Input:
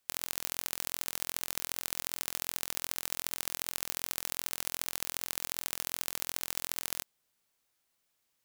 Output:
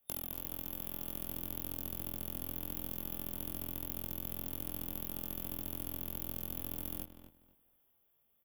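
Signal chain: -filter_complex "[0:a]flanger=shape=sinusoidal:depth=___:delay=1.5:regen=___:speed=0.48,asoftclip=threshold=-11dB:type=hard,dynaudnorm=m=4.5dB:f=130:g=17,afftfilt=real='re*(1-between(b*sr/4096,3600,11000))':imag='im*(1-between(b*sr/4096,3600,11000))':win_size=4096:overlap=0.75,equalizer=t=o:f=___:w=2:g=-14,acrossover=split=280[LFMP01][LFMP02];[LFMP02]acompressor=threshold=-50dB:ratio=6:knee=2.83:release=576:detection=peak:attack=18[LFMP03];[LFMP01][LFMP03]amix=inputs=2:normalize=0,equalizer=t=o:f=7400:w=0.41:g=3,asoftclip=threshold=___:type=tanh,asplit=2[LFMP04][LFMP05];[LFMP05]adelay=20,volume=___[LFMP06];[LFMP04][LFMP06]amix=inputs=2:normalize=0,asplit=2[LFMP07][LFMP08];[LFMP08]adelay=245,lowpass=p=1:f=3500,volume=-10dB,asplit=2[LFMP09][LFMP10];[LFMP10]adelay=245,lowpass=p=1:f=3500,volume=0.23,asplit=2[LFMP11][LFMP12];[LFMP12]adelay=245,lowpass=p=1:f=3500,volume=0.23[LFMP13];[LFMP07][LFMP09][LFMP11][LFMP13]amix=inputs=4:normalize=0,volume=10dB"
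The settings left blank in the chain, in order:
3.9, -72, 2000, -26.5dB, -3dB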